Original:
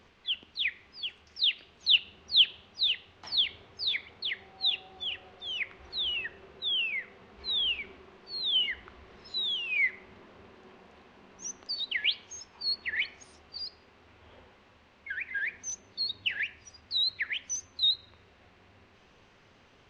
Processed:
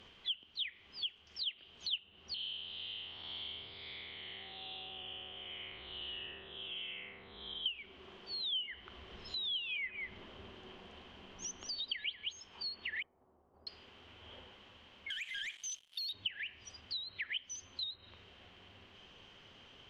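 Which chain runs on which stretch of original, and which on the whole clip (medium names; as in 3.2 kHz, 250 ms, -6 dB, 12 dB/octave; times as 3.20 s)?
2.34–7.66 s: spectral blur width 307 ms + low-pass 2.1 kHz
9.11–12.33 s: bass shelf 72 Hz +11.5 dB + delay 191 ms -11.5 dB
13.02–13.67 s: companding laws mixed up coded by A + low-pass 1 kHz 24 dB/octave + bass shelf 180 Hz -5 dB
15.10–16.13 s: ladder band-pass 3.9 kHz, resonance 50% + waveshaping leveller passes 5
whole clip: low-pass that closes with the level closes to 2 kHz, closed at -25 dBFS; peaking EQ 3.1 kHz +14.5 dB 0.28 oct; compression 3:1, threshold -39 dBFS; trim -1.5 dB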